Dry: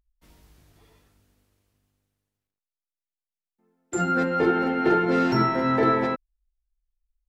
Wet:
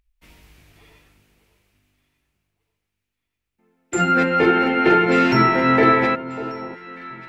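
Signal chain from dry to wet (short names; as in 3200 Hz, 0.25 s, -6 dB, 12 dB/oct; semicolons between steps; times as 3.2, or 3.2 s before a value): bell 2400 Hz +10.5 dB 0.86 oct; on a send: echo with dull and thin repeats by turns 0.594 s, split 1200 Hz, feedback 52%, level -13 dB; on the sum: gain +4.5 dB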